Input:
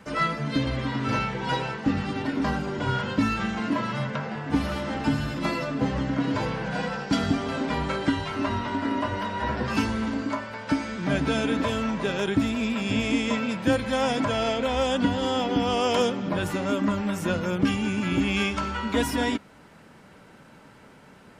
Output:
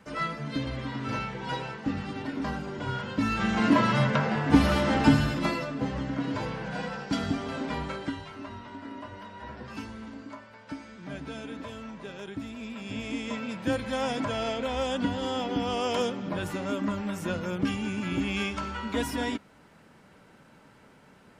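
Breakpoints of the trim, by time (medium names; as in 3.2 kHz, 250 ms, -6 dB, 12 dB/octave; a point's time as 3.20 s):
3.12 s -6 dB
3.65 s +5 dB
5.10 s +5 dB
5.73 s -5 dB
7.76 s -5 dB
8.46 s -14 dB
12.38 s -14 dB
13.79 s -5 dB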